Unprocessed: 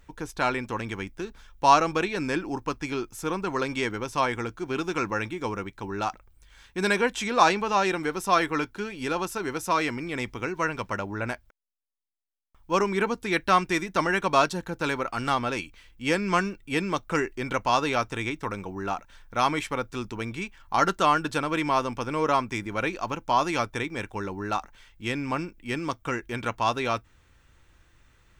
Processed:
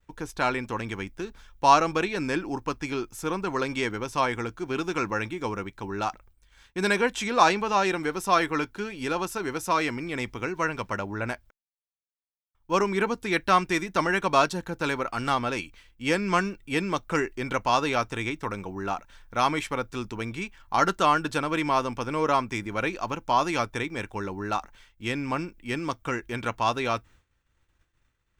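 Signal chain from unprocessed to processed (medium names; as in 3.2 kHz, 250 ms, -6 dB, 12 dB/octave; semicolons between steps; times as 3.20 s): expander -48 dBFS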